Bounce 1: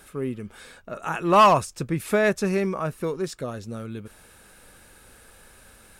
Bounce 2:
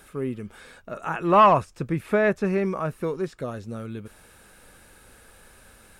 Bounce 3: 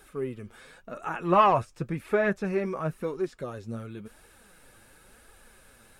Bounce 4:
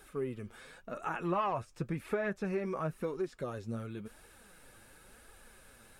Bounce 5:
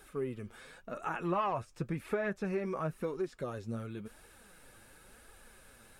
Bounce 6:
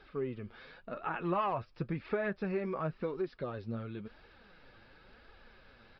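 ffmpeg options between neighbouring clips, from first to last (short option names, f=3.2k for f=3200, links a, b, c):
-filter_complex "[0:a]acrossover=split=2800[a][b];[b]acompressor=threshold=-52dB:ratio=4:attack=1:release=60[c];[a][c]amix=inputs=2:normalize=0"
-af "flanger=delay=2.2:depth=6.8:regen=37:speed=0.94:shape=triangular"
-af "acompressor=threshold=-29dB:ratio=4,volume=-2dB"
-af anull
-af "aresample=11025,aresample=44100"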